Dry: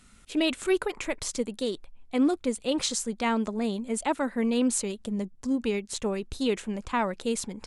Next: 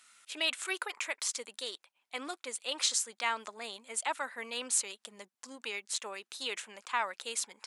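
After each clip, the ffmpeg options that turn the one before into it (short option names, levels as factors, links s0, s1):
-af "highpass=1100"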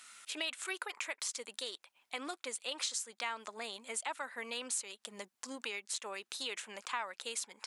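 -af "acompressor=threshold=0.00447:ratio=2.5,volume=2"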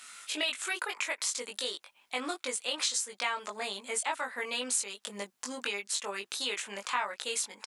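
-filter_complex "[0:a]asplit=2[s0][s1];[s1]adelay=20,volume=0.75[s2];[s0][s2]amix=inputs=2:normalize=0,volume=1.68"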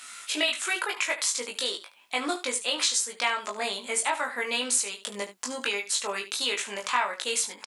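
-af "aecho=1:1:17|73:0.335|0.224,volume=1.78"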